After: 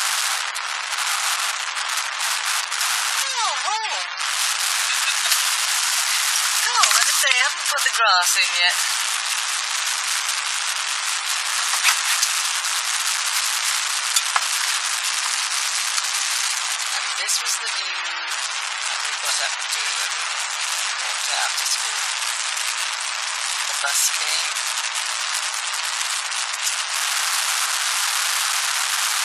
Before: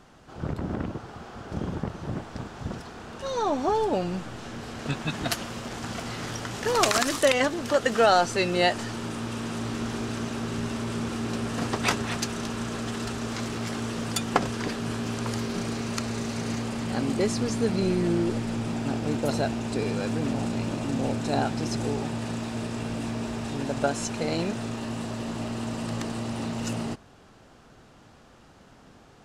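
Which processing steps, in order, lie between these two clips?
linear delta modulator 64 kbit/s, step −23 dBFS
gate on every frequency bin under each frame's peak −30 dB strong
high-pass filter 970 Hz 24 dB per octave
spectral tilt +2 dB per octave
in parallel at 0 dB: brickwall limiter −16.5 dBFS, peak gain reduction 10 dB
on the sum: level +2.5 dB

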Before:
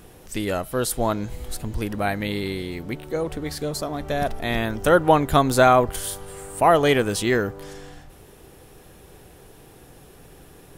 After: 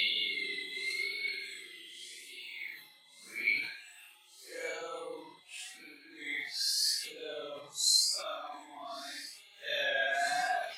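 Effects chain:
spectral dynamics exaggerated over time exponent 1.5
reverb reduction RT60 1.2 s
treble cut that deepens with the level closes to 2,900 Hz, closed at −20 dBFS
high-pass filter 1,400 Hz 12 dB per octave
delay with a high-pass on its return 447 ms, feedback 71%, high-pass 3,500 Hz, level −15.5 dB
pitch vibrato 4.5 Hz 76 cents
extreme stretch with random phases 5.3×, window 0.05 s, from 0:02.27
level that may fall only so fast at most 79 dB per second
level +7 dB

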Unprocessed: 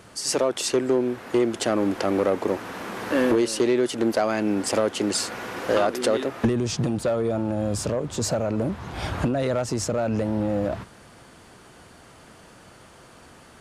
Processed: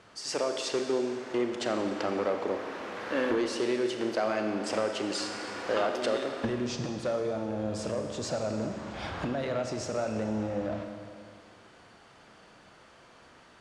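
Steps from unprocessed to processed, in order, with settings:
low-pass filter 5,300 Hz 12 dB per octave
low-shelf EQ 320 Hz −7.5 dB
four-comb reverb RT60 2.2 s, combs from 29 ms, DRR 4.5 dB
level −5.5 dB

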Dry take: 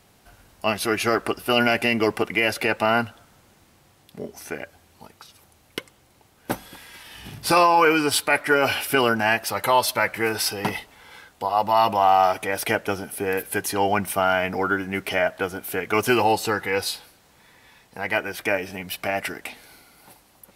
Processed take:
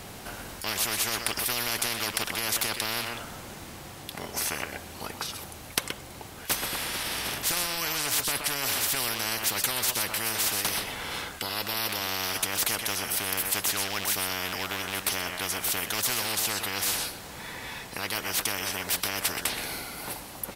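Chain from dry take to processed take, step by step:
loose part that buzzes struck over −29 dBFS, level −27 dBFS
single-tap delay 125 ms −16.5 dB
every bin compressed towards the loudest bin 10 to 1

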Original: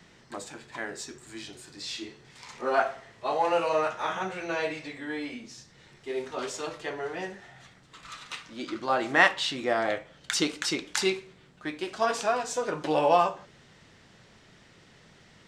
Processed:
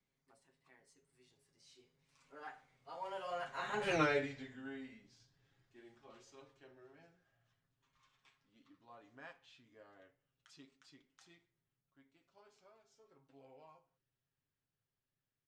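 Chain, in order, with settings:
source passing by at 0:03.95, 39 m/s, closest 2.5 metres
low-shelf EQ 130 Hz +9.5 dB
comb filter 7.4 ms, depth 54%
level +2.5 dB

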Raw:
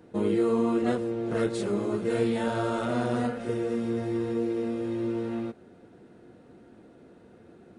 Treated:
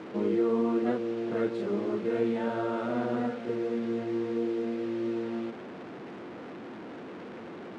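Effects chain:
linear delta modulator 64 kbit/s, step −33.5 dBFS
band-pass filter 220–2,600 Hz
low-shelf EQ 320 Hz +6 dB
level −3.5 dB

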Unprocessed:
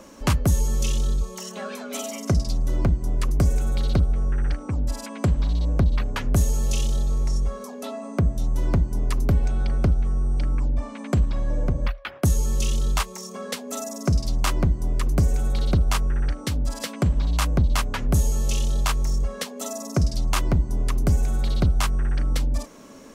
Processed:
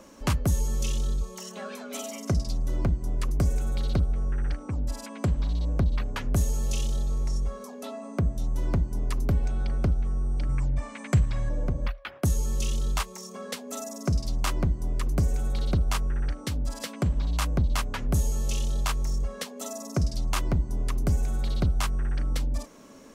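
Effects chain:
0:10.49–0:11.49: octave-band graphic EQ 125/250/2,000/8,000 Hz +9/−5/+8/+8 dB
level −4.5 dB

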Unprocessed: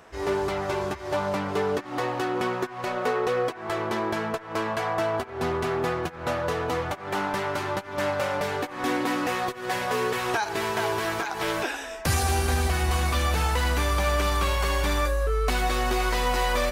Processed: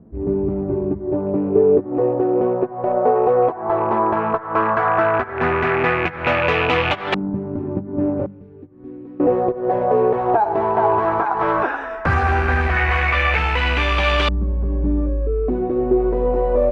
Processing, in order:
loose part that buzzes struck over −34 dBFS, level −24 dBFS
0:08.26–0:09.20: guitar amp tone stack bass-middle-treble 6-0-2
auto-filter low-pass saw up 0.14 Hz 210–3,300 Hz
0:12.76–0:13.39: graphic EQ with 10 bands 250 Hz −9 dB, 500 Hz +4 dB, 2,000 Hz +5 dB
speech leveller within 4 dB 2 s
mains-hum notches 50/100/150/200 Hz
level +6.5 dB

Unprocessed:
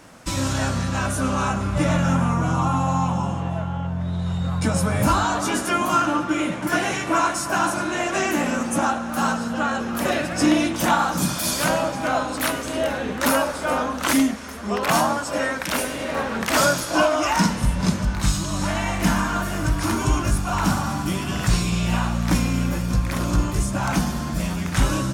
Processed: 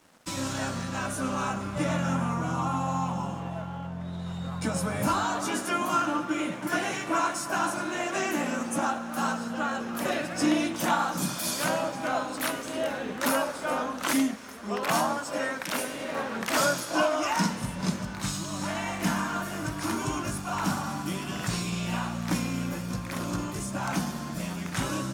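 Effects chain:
high-pass filter 140 Hz 12 dB per octave
dead-zone distortion −49 dBFS
level −6 dB

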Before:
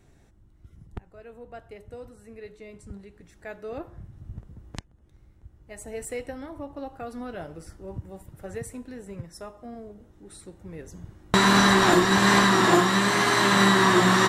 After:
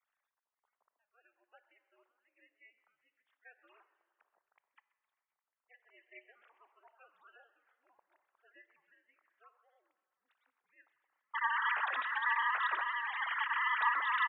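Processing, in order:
three sine waves on the formant tracks
high-pass filter 980 Hz 24 dB per octave
ring modulation 120 Hz
echo with shifted repeats 130 ms, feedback 57%, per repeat +110 Hz, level −21 dB
convolution reverb RT60 2.2 s, pre-delay 17 ms, DRR 15.5 dB
expander for the loud parts 1.5 to 1, over −38 dBFS
level −7.5 dB

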